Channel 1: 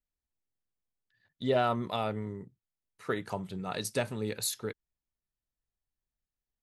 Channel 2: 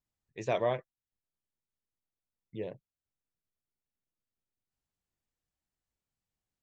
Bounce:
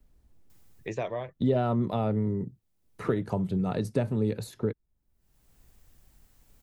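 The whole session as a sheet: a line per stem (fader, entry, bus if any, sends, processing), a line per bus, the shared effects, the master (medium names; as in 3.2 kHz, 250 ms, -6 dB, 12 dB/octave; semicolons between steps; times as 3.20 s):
+1.5 dB, 0.00 s, no send, tilt shelf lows +9.5 dB, about 720 Hz
+2.0 dB, 0.50 s, no send, treble shelf 8.6 kHz +10 dB; auto duck -17 dB, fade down 0.85 s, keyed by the first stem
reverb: none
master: three bands compressed up and down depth 70%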